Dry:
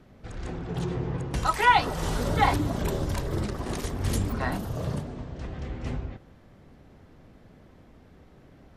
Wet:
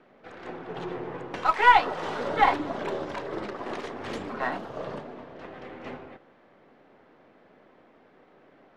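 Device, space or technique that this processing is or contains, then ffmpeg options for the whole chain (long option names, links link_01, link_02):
crystal radio: -af "highpass=380,lowpass=2700,aeval=exprs='if(lt(val(0),0),0.708*val(0),val(0))':channel_layout=same,volume=4dB"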